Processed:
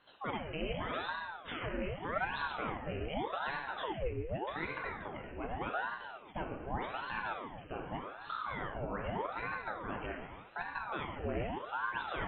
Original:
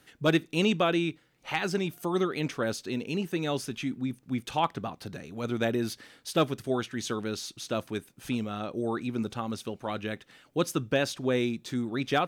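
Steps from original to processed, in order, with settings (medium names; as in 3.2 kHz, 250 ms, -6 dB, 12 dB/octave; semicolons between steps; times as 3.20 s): reverb removal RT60 0.71 s; peak limiter -25.5 dBFS, peak gain reduction 11.5 dB; 8.12–8.59 s: frequency shift -210 Hz; brick-wall FIR low-pass 3 kHz; plate-style reverb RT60 1.5 s, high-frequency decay 0.75×, DRR -0.5 dB; ring modulator with a swept carrier 730 Hz, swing 80%, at 0.84 Hz; trim -2.5 dB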